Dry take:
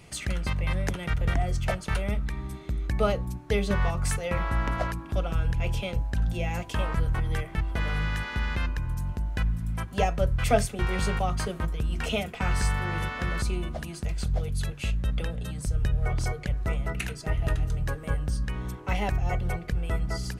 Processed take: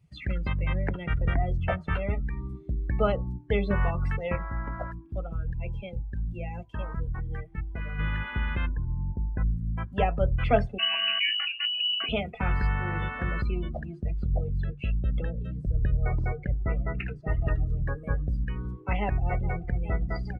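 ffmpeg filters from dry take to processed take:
ffmpeg -i in.wav -filter_complex "[0:a]asettb=1/sr,asplit=3[link_01][link_02][link_03];[link_01]atrim=end=1.594[link_04];[link_02]atrim=start=1.59:end=2.21,asetpts=PTS-STARTPTS,afade=type=in:duration=0.004:curve=qsin,afade=type=out:start_time=0.616:duration=0.004:curve=qsin,asplit=2[link_05][link_06];[link_06]adelay=12,volume=-6dB[link_07];[link_05][link_07]amix=inputs=2:normalize=0,atrim=end_sample=27342[link_08];[link_03]atrim=start=2.206[link_09];[link_04][link_08]acrossfade=duration=0.004:curve1=hsin:curve2=qsin[link_10];[link_10][link_09]acrossfade=duration=0.004:curve1=qsin:curve2=hsin,asettb=1/sr,asplit=3[link_11][link_12][link_13];[link_11]atrim=end=8.694[link_14];[link_12]atrim=start=8.69:end=9.45,asetpts=PTS-STARTPTS,afade=type=in:duration=0.004:curve=qsin,afade=type=out:start_time=0.756:duration=0.004:curve=qsin,lowpass=1300[link_15];[link_13]atrim=start=9.446[link_16];[link_14][link_15]acrossfade=duration=0.004:curve1=hsin:curve2=qsin[link_17];[link_17][link_16]acrossfade=duration=0.004:curve1=qsin:curve2=hsin,asettb=1/sr,asplit=3[link_18][link_19][link_20];[link_18]atrim=end=10.784[link_21];[link_19]atrim=start=10.78:end=12.09,asetpts=PTS-STARTPTS,afade=type=in:duration=0.004:curve=qsin,afade=type=out:start_time=1.306:duration=0.004:curve=qsin,lowpass=frequency=2600:width_type=q:width=0.5098,lowpass=frequency=2600:width_type=q:width=0.6013,lowpass=frequency=2600:width_type=q:width=0.9,lowpass=frequency=2600:width_type=q:width=2.563,afreqshift=-3000[link_22];[link_20]atrim=start=12.086[link_23];[link_21][link_22]acrossfade=duration=0.004:curve1=hsin:curve2=qsin[link_24];[link_24][link_23]acrossfade=duration=0.004:curve1=qsin:curve2=hsin,asettb=1/sr,asplit=3[link_25][link_26][link_27];[link_25]atrim=end=13.814[link_28];[link_26]atrim=start=13.81:end=17.29,asetpts=PTS-STARTPTS,afade=type=in:duration=0.004:curve=qsin,afade=type=out:start_time=3.476:duration=0.004:curve=qsin,aemphasis=mode=reproduction:type=50fm[link_29];[link_27]atrim=start=17.286[link_30];[link_28][link_29]acrossfade=duration=0.004:curve1=hsin:curve2=qsin[link_31];[link_31][link_30]acrossfade=duration=0.004:curve1=qsin:curve2=hsin,asplit=2[link_32][link_33];[link_33]afade=type=in:start_time=19:duration=0.01,afade=type=out:start_time=19.79:duration=0.01,aecho=0:1:420|840|1260|1680|2100|2520|2940|3360|3780|4200|4620|5040:0.211349|0.179647|0.1527|0.129795|0.110325|0.0937766|0.0797101|0.0677536|0.0575906|0.048952|0.0416092|0.0353678[link_34];[link_32][link_34]amix=inputs=2:normalize=0,asplit=3[link_35][link_36][link_37];[link_35]atrim=end=4.362[link_38];[link_36]atrim=start=4.358:end=7.992,asetpts=PTS-STARTPTS,volume=-5.5dB[link_39];[link_37]atrim=start=7.988[link_40];[link_38][link_39]acrossfade=duration=0.004:curve1=hsin:curve2=hsin[link_41];[link_41][link_40]acrossfade=duration=0.004:curve1=hsin:curve2=hsin,acrossover=split=4500[link_42][link_43];[link_43]acompressor=threshold=-55dB:ratio=4:attack=1:release=60[link_44];[link_42][link_44]amix=inputs=2:normalize=0,afftdn=noise_reduction=25:noise_floor=-36" out.wav

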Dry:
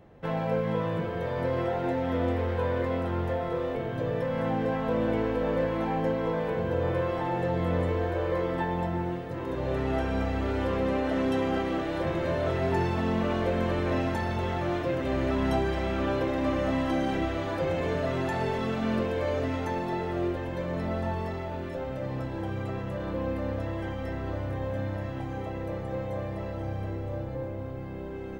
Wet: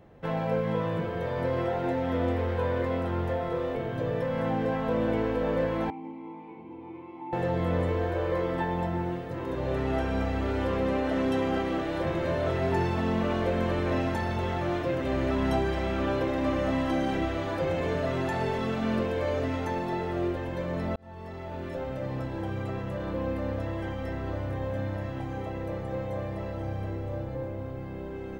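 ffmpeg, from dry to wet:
ffmpeg -i in.wav -filter_complex "[0:a]asettb=1/sr,asplit=3[link_01][link_02][link_03];[link_01]atrim=end=5.904[link_04];[link_02]atrim=start=5.9:end=7.33,asetpts=PTS-STARTPTS,afade=type=in:duration=0.004:curve=qsin,afade=type=out:start_time=1.426:duration=0.004:curve=qsin,asplit=3[link_05][link_06][link_07];[link_05]bandpass=frequency=300:width_type=q:width=8,volume=0dB[link_08];[link_06]bandpass=frequency=870:width_type=q:width=8,volume=-6dB[link_09];[link_07]bandpass=frequency=2240:width_type=q:width=8,volume=-9dB[link_10];[link_08][link_09][link_10]amix=inputs=3:normalize=0[link_11];[link_03]atrim=start=7.326[link_12];[link_04][link_11]acrossfade=duration=0.004:curve1=hsin:curve2=qsin[link_13];[link_13][link_12]acrossfade=duration=0.004:curve1=qsin:curve2=hsin,asplit=2[link_14][link_15];[link_14]atrim=end=20.96,asetpts=PTS-STARTPTS,afade=type=out:start_time=20.956:duration=0.004:curve=hsin[link_16];[link_15]atrim=start=20.96,asetpts=PTS-STARTPTS,afade=type=in:duration=0.76[link_17];[link_16][link_17]concat=n=2:v=0:a=1" out.wav

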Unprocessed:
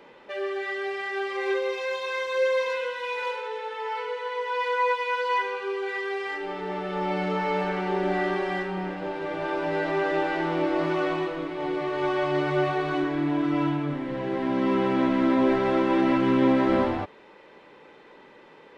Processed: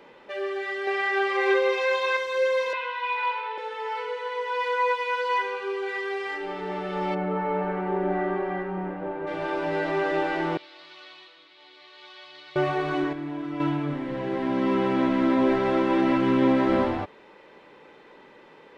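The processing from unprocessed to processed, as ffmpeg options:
ffmpeg -i in.wav -filter_complex "[0:a]asettb=1/sr,asplit=3[link_01][link_02][link_03];[link_01]atrim=end=0.874[link_04];[link_02]atrim=start=0.87:end=2.17,asetpts=PTS-STARTPTS,afade=type=in:duration=0.004:curve=qsin,afade=type=out:start_time=1.296:duration=0.004:curve=qsin,equalizer=frequency=1200:width=0.31:gain=7[link_05];[link_03]atrim=start=2.166[link_06];[link_04][link_05]acrossfade=duration=0.004:curve1=hsin:curve2=qsin[link_07];[link_07][link_06]acrossfade=duration=0.004:curve1=qsin:curve2=hsin,asettb=1/sr,asplit=3[link_08][link_09][link_10];[link_08]atrim=end=2.734[link_11];[link_09]atrim=start=2.73:end=3.58,asetpts=PTS-STARTPTS,afade=type=in:duration=0.004:curve=qsin,afade=type=out:start_time=0.846:duration=0.004:curve=qsin,highpass=frequency=450:width=0.5412,highpass=frequency=450:width=1.3066,equalizer=frequency=540:width_type=q:width=4:gain=-9,equalizer=frequency=980:width_type=q:width=4:gain=7,equalizer=frequency=2400:width_type=q:width=4:gain=4,lowpass=frequency=4300:width=0.5412,lowpass=frequency=4300:width=1.3066[link_12];[link_10]atrim=start=3.576[link_13];[link_11][link_12]acrossfade=duration=0.004:curve1=hsin:curve2=qsin[link_14];[link_14][link_13]acrossfade=duration=0.004:curve1=qsin:curve2=hsin,asplit=3[link_15][link_16][link_17];[link_15]afade=type=out:start_time=7.14:duration=0.02[link_18];[link_16]lowpass=1500,afade=type=in:start_time=7.14:duration=0.02,afade=type=out:start_time=9.26:duration=0.02[link_19];[link_17]afade=type=in:start_time=9.26:duration=0.02[link_20];[link_18][link_19][link_20]amix=inputs=3:normalize=0,asettb=1/sr,asplit=3[link_21][link_22][link_23];[link_21]atrim=end=10.574[link_24];[link_22]atrim=start=10.57:end=12.56,asetpts=PTS-STARTPTS,afade=type=in:duration=0.004:curve=qsin,afade=type=out:start_time=1.986:duration=0.004:curve=qsin,bandpass=frequency=4000:width_type=q:width=3.2[link_25];[link_23]atrim=start=12.556[link_26];[link_24][link_25]acrossfade=duration=0.004:curve1=hsin:curve2=qsin[link_27];[link_27][link_26]acrossfade=duration=0.004:curve1=qsin:curve2=hsin,asplit=3[link_28][link_29][link_30];[link_28]atrim=end=13.132[link_31];[link_29]atrim=start=13.128:end=13.602,asetpts=PTS-STARTPTS,volume=-7.5dB[link_32];[link_30]atrim=start=13.598[link_33];[link_31][link_32]acrossfade=duration=0.004:curve1=hsin:curve2=hsin[link_34];[link_34][link_33]acrossfade=duration=0.004:curve1=hsin:curve2=hsin" out.wav

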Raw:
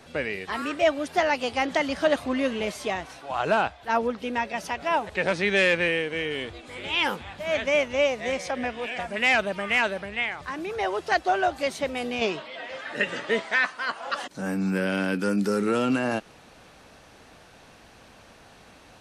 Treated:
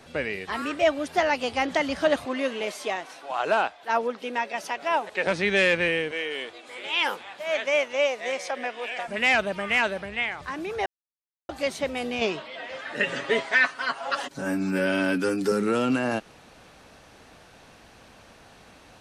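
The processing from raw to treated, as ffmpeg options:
ffmpeg -i in.wav -filter_complex "[0:a]asettb=1/sr,asplit=3[link_01][link_02][link_03];[link_01]atrim=end=2.254[link_04];[link_02]atrim=start=2.25:end=5.27,asetpts=PTS-STARTPTS,afade=type=in:duration=0.004:curve=qsin,afade=type=out:start_time=3.016:duration=0.004:curve=qsin,highpass=310[link_05];[link_03]atrim=start=5.266[link_06];[link_04][link_05]acrossfade=duration=0.004:curve1=hsin:curve2=qsin[link_07];[link_07][link_06]acrossfade=duration=0.004:curve1=qsin:curve2=hsin,asettb=1/sr,asplit=3[link_08][link_09][link_10];[link_08]atrim=end=6.114[link_11];[link_09]atrim=start=6.11:end=9.08,asetpts=PTS-STARTPTS,afade=type=in:duration=0.004:curve=qsin,afade=type=out:start_time=2.966:duration=0.004:curve=qsin,highpass=410[link_12];[link_10]atrim=start=9.076[link_13];[link_11][link_12]acrossfade=duration=0.004:curve1=hsin:curve2=qsin[link_14];[link_14][link_13]acrossfade=duration=0.004:curve1=qsin:curve2=hsin,asettb=1/sr,asplit=3[link_15][link_16][link_17];[link_15]atrim=end=13.034[link_18];[link_16]atrim=start=13.03:end=15.52,asetpts=PTS-STARTPTS,afade=type=in:duration=0.004:curve=qsin,afade=type=out:start_time=2.486:duration=0.004:curve=qsin,aecho=1:1:7.3:0.75,atrim=end_sample=109809[link_19];[link_17]atrim=start=15.516[link_20];[link_18][link_19]acrossfade=duration=0.004:curve1=hsin:curve2=qsin[link_21];[link_21][link_20]acrossfade=duration=0.004:curve1=qsin:curve2=hsin,asplit=3[link_22][link_23][link_24];[link_22]atrim=end=10.86,asetpts=PTS-STARTPTS,afade=type=out:start_time=10.856:duration=0.004:curve=hsin[link_25];[link_23]atrim=start=10.86:end=11.49,asetpts=PTS-STARTPTS,volume=0[link_26];[link_24]atrim=start=11.49,asetpts=PTS-STARTPTS,afade=type=in:duration=0.004:curve=hsin[link_27];[link_25][link_26][link_27]concat=n=3:v=0:a=1" out.wav

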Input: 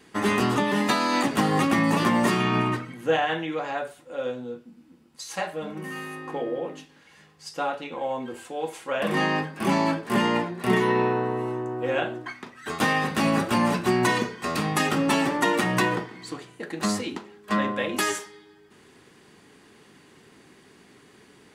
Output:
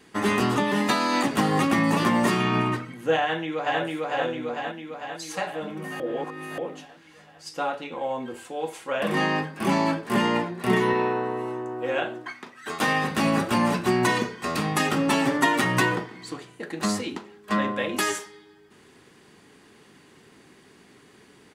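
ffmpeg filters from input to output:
ffmpeg -i in.wav -filter_complex "[0:a]asplit=2[link_01][link_02];[link_02]afade=type=in:start_time=3.21:duration=0.01,afade=type=out:start_time=3.81:duration=0.01,aecho=0:1:450|900|1350|1800|2250|2700|3150|3600|4050|4500|4950:0.944061|0.61364|0.398866|0.259263|0.168521|0.109538|0.0712|0.04628|0.030082|0.0195533|0.0127096[link_03];[link_01][link_03]amix=inputs=2:normalize=0,asettb=1/sr,asplit=3[link_04][link_05][link_06];[link_04]atrim=end=10.934[link_07];[link_05]atrim=start=10.93:end=12.88,asetpts=PTS-STARTPTS,afade=type=in:duration=0.004:curve=qsin,afade=type=out:start_time=1.946:duration=0.004:curve=qsin,highpass=frequency=250:poles=1[link_08];[link_06]atrim=start=12.876[link_09];[link_07][link_08]acrossfade=duration=0.004:curve1=hsin:curve2=qsin[link_10];[link_10][link_09]acrossfade=duration=0.004:curve1=qsin:curve2=hsin,asettb=1/sr,asplit=3[link_11][link_12][link_13];[link_11]atrim=end=15.264[link_14];[link_12]atrim=start=15.26:end=15.92,asetpts=PTS-STARTPTS,afade=type=in:duration=0.004:curve=qsin,afade=type=out:start_time=0.656:duration=0.004:curve=qsin,aecho=1:1:7.4:0.65,atrim=end_sample=29106[link_15];[link_13]atrim=start=15.916[link_16];[link_14][link_15]acrossfade=duration=0.004:curve1=hsin:curve2=qsin[link_17];[link_17][link_16]acrossfade=duration=0.004:curve1=qsin:curve2=hsin,asplit=3[link_18][link_19][link_20];[link_18]atrim=end=6.002[link_21];[link_19]atrim=start=5.998:end=6.582,asetpts=PTS-STARTPTS,areverse[link_22];[link_20]atrim=start=6.578[link_23];[link_21][link_22]acrossfade=duration=0.004:curve1=hsin:curve2=hsin[link_24];[link_24][link_23]acrossfade=duration=0.004:curve1=hsin:curve2=hsin" out.wav

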